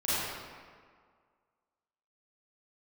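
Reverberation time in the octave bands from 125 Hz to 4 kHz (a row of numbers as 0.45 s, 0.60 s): 1.6 s, 1.8 s, 1.8 s, 1.9 s, 1.6 s, 1.1 s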